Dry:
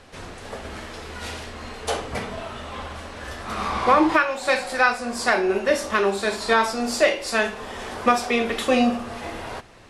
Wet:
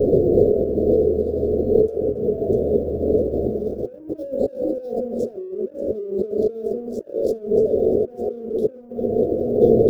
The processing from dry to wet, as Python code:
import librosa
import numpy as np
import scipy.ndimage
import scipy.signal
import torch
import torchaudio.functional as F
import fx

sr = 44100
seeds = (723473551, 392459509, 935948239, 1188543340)

y = fx.wiener(x, sr, points=15)
y = fx.mod_noise(y, sr, seeds[0], snr_db=31)
y = scipy.signal.sosfilt(scipy.signal.cheby1(5, 1.0, [700.0, 3400.0], 'bandstop', fs=sr, output='sos'), y)
y = fx.doubler(y, sr, ms=14.0, db=-8.5)
y = fx.echo_feedback(y, sr, ms=647, feedback_pct=41, wet_db=-19.5)
y = fx.over_compress(y, sr, threshold_db=-45.0, ratio=-1.0)
y = fx.small_body(y, sr, hz=(400.0, 2300.0), ring_ms=20, db=15)
y = np.sign(y) * np.maximum(np.abs(y) - 10.0 ** (-55.5 / 20.0), 0.0)
y = fx.graphic_eq(y, sr, hz=(125, 250, 500, 1000, 2000, 4000, 8000), db=(9, 5, 8, -10, -10, -11, -8))
y = y * librosa.db_to_amplitude(6.5)